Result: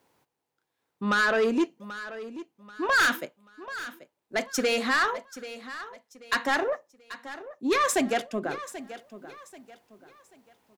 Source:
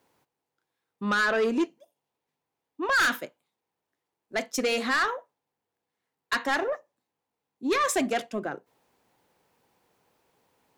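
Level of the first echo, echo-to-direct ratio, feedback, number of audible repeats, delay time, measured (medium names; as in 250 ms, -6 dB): -14.5 dB, -14.0 dB, 34%, 3, 785 ms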